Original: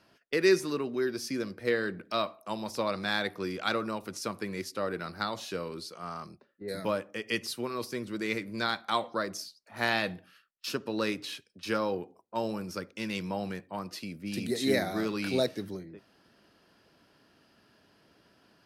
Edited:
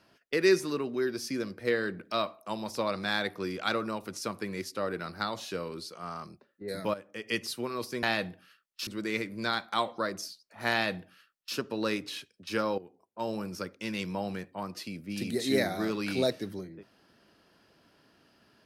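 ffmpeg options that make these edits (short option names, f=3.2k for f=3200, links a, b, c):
-filter_complex "[0:a]asplit=5[a][b][c][d][e];[a]atrim=end=6.94,asetpts=PTS-STARTPTS,afade=t=out:st=6.936:d=0.004:c=hsin:silence=0.223872[f];[b]atrim=start=6.94:end=8.032,asetpts=PTS-STARTPTS,afade=t=in:d=0.4:silence=0.223872[g];[c]atrim=start=9.878:end=10.722[h];[d]atrim=start=8.028:end=11.94,asetpts=PTS-STARTPTS,afade=t=out:st=3.908:d=0.004:c=hsin:silence=0.188365[i];[e]atrim=start=11.94,asetpts=PTS-STARTPTS,afade=t=in:d=0.62:silence=0.188365[j];[f][g]concat=n=2:v=0:a=1[k];[k][h]acrossfade=d=0.004:c1=hsin:c2=hsin[l];[i][j]concat=n=2:v=0:a=1[m];[l][m]acrossfade=d=0.004:c1=hsin:c2=hsin"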